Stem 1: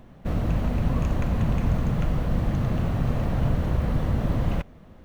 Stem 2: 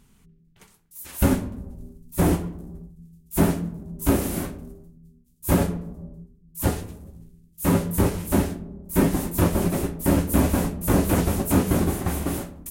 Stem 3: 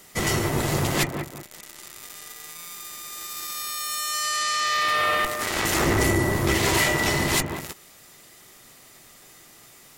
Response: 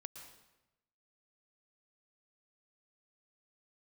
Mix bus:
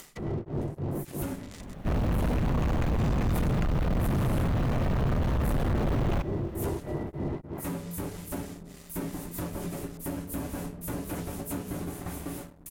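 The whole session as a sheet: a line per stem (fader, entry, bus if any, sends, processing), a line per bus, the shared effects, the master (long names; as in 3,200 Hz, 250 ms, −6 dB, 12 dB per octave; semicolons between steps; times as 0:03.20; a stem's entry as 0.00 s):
−1.0 dB, 1.60 s, no send, tube saturation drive 20 dB, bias 0.35
−16.0 dB, 0.00 s, no send, mains-hum notches 50/100/150/200/250 Hz; comb filter 6.9 ms, depth 33%; downward compressor 3 to 1, threshold −23 dBFS, peak gain reduction 8 dB
−9.5 dB, 0.00 s, muted 0:01.74–0:02.98, no send, treble cut that deepens with the level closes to 490 Hz, closed at −23 dBFS; tremolo along a rectified sine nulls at 3.3 Hz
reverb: not used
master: leveller curve on the samples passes 2; upward compression, threshold −38 dBFS; soft clipping −22 dBFS, distortion −18 dB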